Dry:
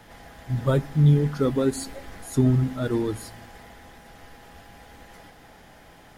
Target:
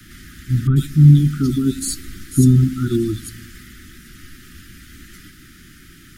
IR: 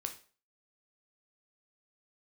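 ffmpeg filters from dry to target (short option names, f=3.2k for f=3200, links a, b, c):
-filter_complex "[0:a]tiltshelf=f=970:g=3.5,asettb=1/sr,asplit=3[a][b][c];[a]atrim=end=0.674[d];[b]atrim=start=0.67:end=3.29,asetpts=PTS-STARTPTS,afade=t=in:d=0.004:c=qsin,afade=t=out:st=2.616:d=0.004:c=qsin,acrossover=split=1900[e][f];[f]adelay=90[g];[e][g]amix=inputs=2:normalize=0,atrim=end_sample=115542[h];[c]atrim=start=3.286[i];[d][h]acrossfade=d=0.004:c1=hsin:c2=qsin[j];[j][i]acrossfade=d=0.004:c1=qsin:c2=hsin,acrossover=split=350|3000[k][l][m];[l]acompressor=threshold=-29dB:ratio=6[n];[k][n][m]amix=inputs=3:normalize=0,asuperstop=centerf=680:order=20:qfactor=0.8,highshelf=f=3.7k:g=11.5,volume=5dB"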